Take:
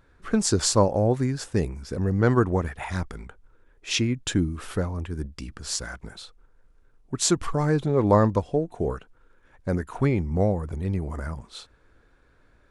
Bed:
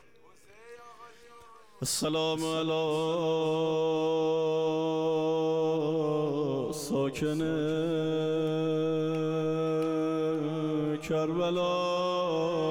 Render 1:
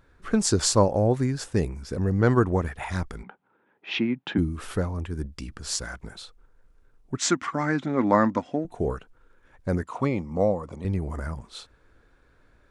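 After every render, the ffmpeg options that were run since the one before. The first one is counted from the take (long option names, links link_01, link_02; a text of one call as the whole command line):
ffmpeg -i in.wav -filter_complex "[0:a]asplit=3[link_01][link_02][link_03];[link_01]afade=type=out:start_time=3.22:duration=0.02[link_04];[link_02]highpass=frequency=170:width=0.5412,highpass=frequency=170:width=1.3066,equalizer=frequency=190:width_type=q:width=4:gain=6,equalizer=frequency=480:width_type=q:width=4:gain=-3,equalizer=frequency=830:width_type=q:width=4:gain=9,lowpass=frequency=3200:width=0.5412,lowpass=frequency=3200:width=1.3066,afade=type=in:start_time=3.22:duration=0.02,afade=type=out:start_time=4.37:duration=0.02[link_05];[link_03]afade=type=in:start_time=4.37:duration=0.02[link_06];[link_04][link_05][link_06]amix=inputs=3:normalize=0,asettb=1/sr,asplit=3[link_07][link_08][link_09];[link_07]atrim=end=7.174[link_10];[link_08]atrim=start=7.17:end=8.65,asetpts=PTS-STARTPTS,afade=type=in:duration=0.004:curve=qsin,afade=type=out:start_time=1.476:duration=0.004:curve=qsin,highpass=230,equalizer=frequency=250:width_type=q:width=4:gain=10,equalizer=frequency=440:width_type=q:width=4:gain=-10,equalizer=frequency=1400:width_type=q:width=4:gain=6,equalizer=frequency=2000:width_type=q:width=4:gain=9,equalizer=frequency=4300:width_type=q:width=4:gain=-4,lowpass=frequency=7100:width=0.5412,lowpass=frequency=7100:width=1.3066[link_11];[link_09]atrim=start=8.646[link_12];[link_10][link_11]acrossfade=duration=0.004:curve1=hsin:curve2=qsin[link_13];[link_13][link_12]acrossfade=duration=0.004:curve1=qsin:curve2=hsin,asettb=1/sr,asplit=3[link_14][link_15][link_16];[link_14]atrim=end=9.834[link_17];[link_15]atrim=start=9.83:end=10.85,asetpts=PTS-STARTPTS,afade=type=in:duration=0.004:curve=qsin,afade=type=out:start_time=1.016:duration=0.004:curve=qsin,highpass=150,equalizer=frequency=160:width_type=q:width=4:gain=-4,equalizer=frequency=380:width_type=q:width=4:gain=-6,equalizer=frequency=540:width_type=q:width=4:gain=5,equalizer=frequency=1100:width_type=q:width=4:gain=7,equalizer=frequency=1600:width_type=q:width=4:gain=-10,lowpass=frequency=8500:width=0.5412,lowpass=frequency=8500:width=1.3066[link_18];[link_16]atrim=start=10.846[link_19];[link_17][link_18]acrossfade=duration=0.004:curve1=hsin:curve2=qsin[link_20];[link_20][link_19]acrossfade=duration=0.004:curve1=qsin:curve2=hsin" out.wav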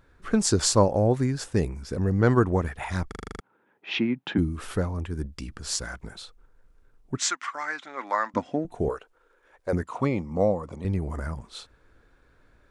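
ffmpeg -i in.wav -filter_complex "[0:a]asettb=1/sr,asplit=3[link_01][link_02][link_03];[link_01]atrim=end=7.234[link_04];[link_02]atrim=start=7.23:end=8.34,asetpts=PTS-STARTPTS,afade=type=in:duration=0.004:curve=qsin,afade=type=out:start_time=1.106:duration=0.004:curve=qsin,highpass=1000[link_05];[link_03]atrim=start=8.336[link_06];[link_04][link_05]acrossfade=duration=0.004:curve1=hsin:curve2=qsin[link_07];[link_07][link_06]acrossfade=duration=0.004:curve1=qsin:curve2=hsin,asettb=1/sr,asplit=3[link_08][link_09][link_10];[link_08]atrim=end=8.894[link_11];[link_09]atrim=start=8.89:end=9.73,asetpts=PTS-STARTPTS,afade=type=in:duration=0.004:curve=qsin,afade=type=out:start_time=0.836:duration=0.004:curve=qsin,lowshelf=frequency=290:width_type=q:width=1.5:gain=-13.5[link_12];[link_10]atrim=start=9.726[link_13];[link_11][link_12]acrossfade=duration=0.004:curve1=hsin:curve2=qsin[link_14];[link_14][link_13]acrossfade=duration=0.004:curve1=qsin:curve2=hsin,asplit=9[link_15][link_16][link_17][link_18][link_19][link_20][link_21][link_22][link_23];[link_15]atrim=end=3.122[link_24];[link_16]atrim=start=3.078:end=3.122[link_25];[link_17]atrim=start=3.078:end=3.122[link_26];[link_18]atrim=start=3.078:end=3.122[link_27];[link_19]atrim=start=3.078:end=3.122[link_28];[link_20]atrim=start=3.078:end=3.122[link_29];[link_21]atrim=start=3.078:end=3.122[link_30];[link_22]atrim=start=3.078:end=3.122[link_31];[link_23]atrim=start=3.398[link_32];[link_24][link_25]acrossfade=duration=0.004:curve1=hsin:curve2=hsin[link_33];[link_33][link_26]acrossfade=duration=0.004:curve1=hsin:curve2=hsin[link_34];[link_34][link_27]acrossfade=duration=0.004:curve1=hsin:curve2=hsin[link_35];[link_35][link_28]acrossfade=duration=0.004:curve1=hsin:curve2=hsin[link_36];[link_36][link_29]acrossfade=duration=0.004:curve1=hsin:curve2=hsin[link_37];[link_37][link_30]acrossfade=duration=0.004:curve1=hsin:curve2=hsin[link_38];[link_38][link_31]acrossfade=duration=0.004:curve1=hsin:curve2=hsin[link_39];[link_39][link_32]acrossfade=duration=0.004:curve1=hsin:curve2=hsin" out.wav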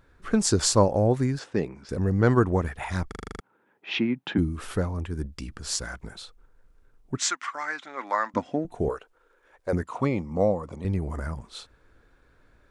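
ffmpeg -i in.wav -filter_complex "[0:a]asettb=1/sr,asplit=3[link_01][link_02][link_03];[link_01]atrim=end=1.394[link_04];[link_02]atrim=start=1.39:end=1.89,asetpts=PTS-STARTPTS,afade=type=in:duration=0.004:curve=qsin,afade=type=out:start_time=0.496:duration=0.004:curve=qsin,highpass=180,lowpass=3900[link_05];[link_03]atrim=start=1.886[link_06];[link_04][link_05]acrossfade=duration=0.004:curve1=hsin:curve2=qsin[link_07];[link_07][link_06]acrossfade=duration=0.004:curve1=qsin:curve2=hsin" out.wav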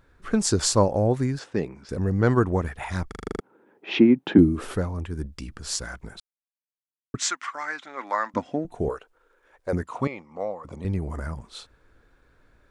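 ffmpeg -i in.wav -filter_complex "[0:a]asettb=1/sr,asplit=3[link_01][link_02][link_03];[link_01]atrim=end=3.264[link_04];[link_02]atrim=start=3.26:end=4.75,asetpts=PTS-STARTPTS,afade=type=in:duration=0.004:curve=qsin,afade=type=out:start_time=1.486:duration=0.004:curve=qsin,equalizer=frequency=360:width=0.62:gain=12[link_05];[link_03]atrim=start=4.746[link_06];[link_04][link_05]acrossfade=duration=0.004:curve1=hsin:curve2=qsin[link_07];[link_07][link_06]acrossfade=duration=0.004:curve1=qsin:curve2=hsin,asettb=1/sr,asplit=3[link_08][link_09][link_10];[link_08]atrim=end=10.074[link_11];[link_09]atrim=start=10.07:end=10.65,asetpts=PTS-STARTPTS,afade=type=in:duration=0.004:curve=qsin,afade=type=out:start_time=0.576:duration=0.004:curve=qsin,bandpass=frequency=1700:width_type=q:width=0.73[link_12];[link_10]atrim=start=10.646[link_13];[link_11][link_12]acrossfade=duration=0.004:curve1=hsin:curve2=qsin[link_14];[link_14][link_13]acrossfade=duration=0.004:curve1=qsin:curve2=hsin,asplit=3[link_15][link_16][link_17];[link_15]atrim=end=6.2,asetpts=PTS-STARTPTS,afade=type=out:start_time=6.196:duration=0.004:curve=hsin[link_18];[link_16]atrim=start=6.2:end=7.14,asetpts=PTS-STARTPTS,volume=0[link_19];[link_17]atrim=start=7.14,asetpts=PTS-STARTPTS,afade=type=in:duration=0.004:curve=hsin[link_20];[link_18][link_19][link_20]concat=n=3:v=0:a=1" out.wav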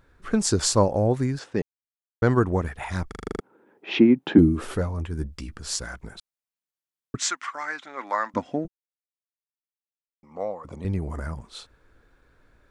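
ffmpeg -i in.wav -filter_complex "[0:a]asettb=1/sr,asplit=3[link_01][link_02][link_03];[link_01]atrim=end=4.234[link_04];[link_02]atrim=start=4.23:end=5.54,asetpts=PTS-STARTPTS,afade=type=in:duration=0.004:curve=qsin,afade=type=out:start_time=1.306:duration=0.004:curve=qsin,asplit=2[link_05][link_06];[link_06]adelay=13,volume=-10.5dB[link_07];[link_05][link_07]amix=inputs=2:normalize=0,atrim=end_sample=57771[link_08];[link_03]atrim=start=5.536[link_09];[link_04][link_08]acrossfade=duration=0.004:curve1=hsin:curve2=qsin[link_10];[link_10][link_09]acrossfade=duration=0.004:curve1=qsin:curve2=hsin,asplit=5[link_11][link_12][link_13][link_14][link_15];[link_11]atrim=end=1.62,asetpts=PTS-STARTPTS,afade=type=out:start_time=1.616:duration=0.004:curve=hsin[link_16];[link_12]atrim=start=1.62:end=2.22,asetpts=PTS-STARTPTS,volume=0[link_17];[link_13]atrim=start=2.22:end=8.68,asetpts=PTS-STARTPTS,afade=type=in:duration=0.004:curve=hsin,afade=type=out:start_time=6.456:duration=0.004:curve=hsin[link_18];[link_14]atrim=start=8.68:end=10.23,asetpts=PTS-STARTPTS,volume=0[link_19];[link_15]atrim=start=10.23,asetpts=PTS-STARTPTS,afade=type=in:duration=0.004:curve=hsin[link_20];[link_16][link_17][link_18][link_19][link_20]concat=n=5:v=0:a=1" out.wav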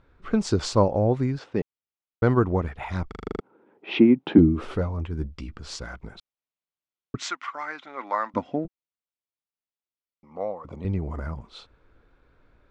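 ffmpeg -i in.wav -af "lowpass=3700,equalizer=frequency=1700:width_type=o:width=0.24:gain=-7" out.wav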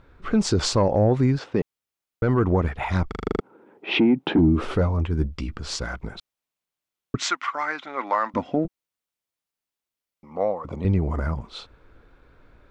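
ffmpeg -i in.wav -af "acontrast=63,alimiter=limit=-11.5dB:level=0:latency=1:release=41" out.wav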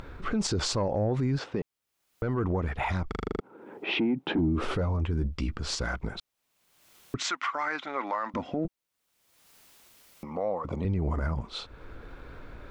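ffmpeg -i in.wav -af "alimiter=limit=-20.5dB:level=0:latency=1:release=50,acompressor=mode=upward:threshold=-33dB:ratio=2.5" out.wav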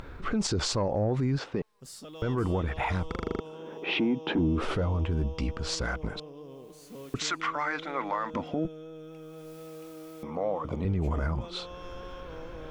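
ffmpeg -i in.wav -i bed.wav -filter_complex "[1:a]volume=-15.5dB[link_01];[0:a][link_01]amix=inputs=2:normalize=0" out.wav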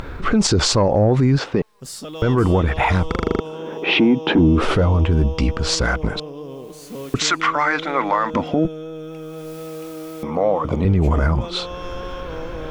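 ffmpeg -i in.wav -af "volume=12dB" out.wav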